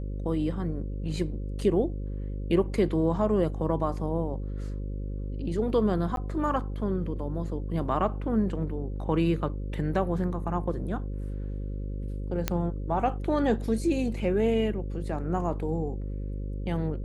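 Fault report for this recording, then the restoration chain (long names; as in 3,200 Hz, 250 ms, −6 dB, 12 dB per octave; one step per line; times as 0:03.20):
mains buzz 50 Hz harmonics 11 −33 dBFS
0:06.16–0:06.17: drop-out 12 ms
0:12.48: click −10 dBFS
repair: click removal
hum removal 50 Hz, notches 11
repair the gap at 0:06.16, 12 ms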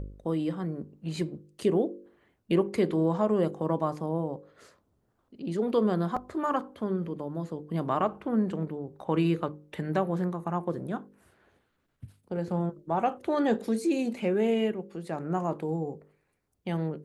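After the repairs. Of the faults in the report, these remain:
none of them is left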